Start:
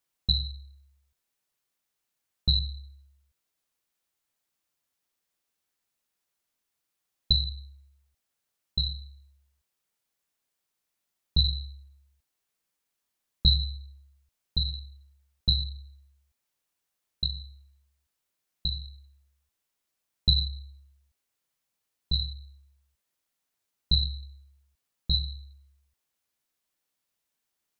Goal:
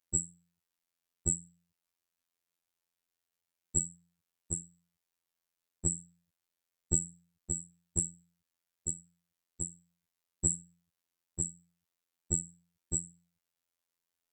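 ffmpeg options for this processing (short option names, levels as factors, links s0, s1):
-af "asetrate=85554,aresample=44100,afftfilt=real='hypot(re,im)*cos(PI*b)':imag='0':win_size=2048:overlap=0.75"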